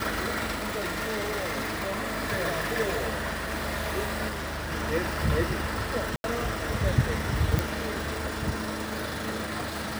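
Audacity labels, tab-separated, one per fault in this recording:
0.520000	2.110000	clipped -26.5 dBFS
4.280000	4.720000	clipped -30 dBFS
6.160000	6.240000	dropout 81 ms
7.590000	7.590000	pop

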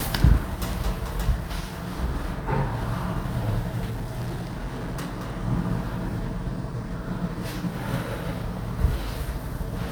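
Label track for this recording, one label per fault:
3.890000	5.340000	clipped -27 dBFS

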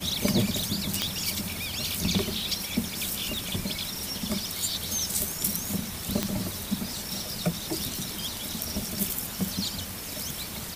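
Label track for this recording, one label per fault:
1.020000	1.020000	pop -8 dBFS
3.370000	3.370000	pop
6.230000	6.230000	pop -9 dBFS

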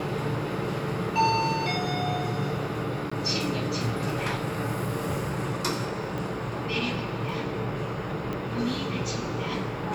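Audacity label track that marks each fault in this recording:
3.100000	3.120000	dropout 15 ms
6.180000	6.180000	pop
8.330000	8.330000	pop -20 dBFS

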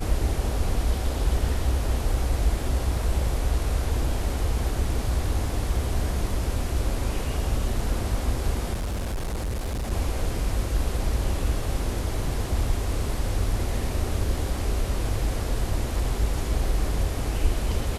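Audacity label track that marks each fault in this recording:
8.730000	9.920000	clipped -25 dBFS

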